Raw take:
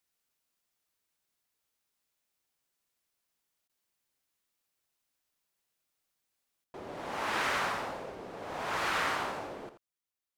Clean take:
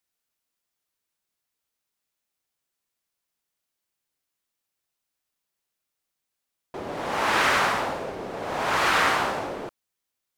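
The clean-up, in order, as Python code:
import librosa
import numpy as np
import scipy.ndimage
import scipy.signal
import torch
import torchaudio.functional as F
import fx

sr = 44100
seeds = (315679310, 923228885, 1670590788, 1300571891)

y = fx.fix_interpolate(x, sr, at_s=(3.68,), length_ms=12.0)
y = fx.fix_echo_inverse(y, sr, delay_ms=83, level_db=-11.0)
y = fx.fix_level(y, sr, at_s=6.64, step_db=10.0)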